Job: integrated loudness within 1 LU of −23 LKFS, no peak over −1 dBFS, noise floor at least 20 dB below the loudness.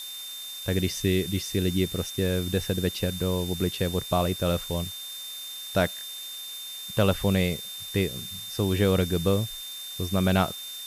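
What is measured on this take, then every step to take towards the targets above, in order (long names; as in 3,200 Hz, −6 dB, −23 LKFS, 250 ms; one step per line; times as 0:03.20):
interfering tone 3,600 Hz; level of the tone −37 dBFS; background noise floor −38 dBFS; target noise floor −48 dBFS; integrated loudness −27.5 LKFS; sample peak −10.5 dBFS; target loudness −23.0 LKFS
→ notch filter 3,600 Hz, Q 30
noise reduction from a noise print 10 dB
level +4.5 dB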